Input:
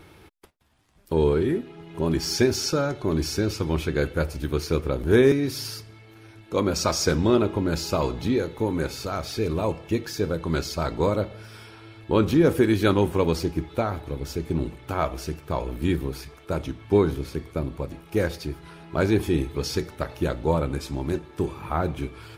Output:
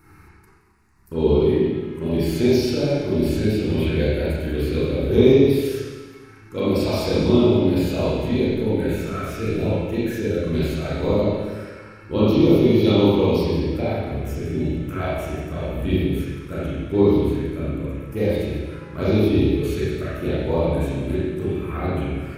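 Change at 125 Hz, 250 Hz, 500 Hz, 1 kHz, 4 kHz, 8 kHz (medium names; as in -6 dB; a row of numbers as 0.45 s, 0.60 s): +4.5 dB, +5.5 dB, +4.0 dB, -1.5 dB, 0.0 dB, no reading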